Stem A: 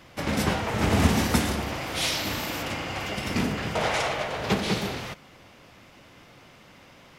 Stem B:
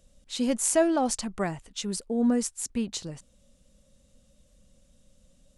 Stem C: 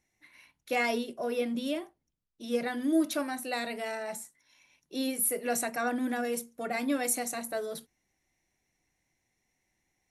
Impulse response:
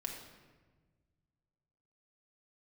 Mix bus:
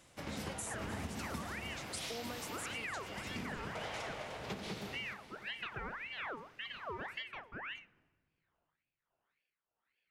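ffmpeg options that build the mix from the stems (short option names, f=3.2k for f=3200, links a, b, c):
-filter_complex "[0:a]volume=-14dB,asplit=2[a][b];[b]volume=-15dB[c];[1:a]highpass=860,acompressor=threshold=-35dB:ratio=6,volume=3dB,asplit=2[d][e];[e]volume=-21.5dB[f];[2:a]lowpass=1.2k,aeval=exprs='val(0)*sin(2*PI*1600*n/s+1600*0.6/1.8*sin(2*PI*1.8*n/s))':c=same,volume=0.5dB,asplit=2[g][h];[h]volume=-22dB[i];[d][g]amix=inputs=2:normalize=0,tremolo=f=1.4:d=0.82,acompressor=threshold=-37dB:ratio=6,volume=0dB[j];[3:a]atrim=start_sample=2205[k];[i][k]afir=irnorm=-1:irlink=0[l];[c][f]amix=inputs=2:normalize=0,aecho=0:1:301|602|903|1204|1505|1806|2107|2408|2709:1|0.57|0.325|0.185|0.106|0.0602|0.0343|0.0195|0.0111[m];[a][j][l][m]amix=inputs=4:normalize=0,acompressor=threshold=-38dB:ratio=6"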